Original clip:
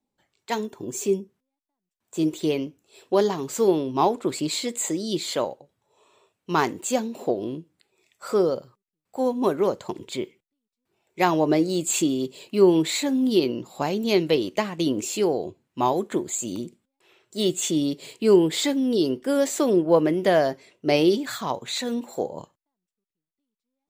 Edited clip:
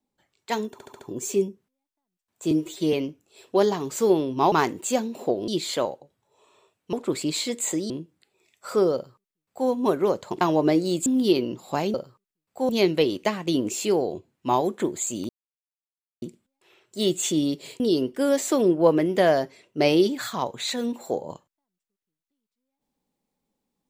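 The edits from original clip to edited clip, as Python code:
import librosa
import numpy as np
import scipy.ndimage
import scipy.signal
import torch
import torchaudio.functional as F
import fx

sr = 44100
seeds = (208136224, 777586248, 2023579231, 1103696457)

y = fx.edit(x, sr, fx.stutter(start_s=0.72, slice_s=0.07, count=5),
    fx.stretch_span(start_s=2.23, length_s=0.28, factor=1.5),
    fx.swap(start_s=4.1, length_s=0.97, other_s=6.52, other_length_s=0.96),
    fx.duplicate(start_s=8.52, length_s=0.75, to_s=14.01),
    fx.cut(start_s=9.99, length_s=1.26),
    fx.cut(start_s=11.9, length_s=1.23),
    fx.insert_silence(at_s=16.61, length_s=0.93),
    fx.cut(start_s=18.19, length_s=0.69), tone=tone)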